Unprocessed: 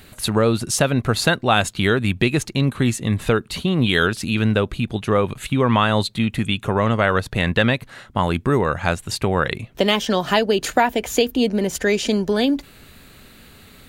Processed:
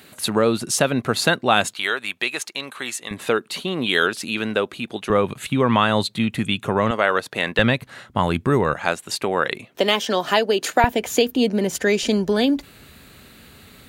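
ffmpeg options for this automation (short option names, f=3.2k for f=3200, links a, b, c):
-af "asetnsamples=n=441:p=0,asendcmd='1.74 highpass f 740;3.11 highpass f 310;5.1 highpass f 130;6.91 highpass f 330;7.59 highpass f 85;8.74 highpass f 280;10.84 highpass f 120;12.03 highpass f 49',highpass=180"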